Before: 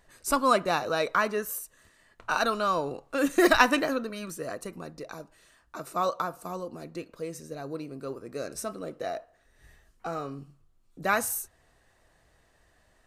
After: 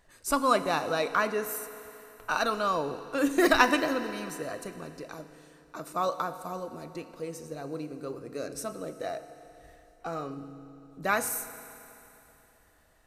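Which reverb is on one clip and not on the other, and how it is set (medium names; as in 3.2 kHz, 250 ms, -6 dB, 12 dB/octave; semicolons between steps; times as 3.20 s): FDN reverb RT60 3.1 s, high-frequency decay 0.95×, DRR 10.5 dB; trim -1.5 dB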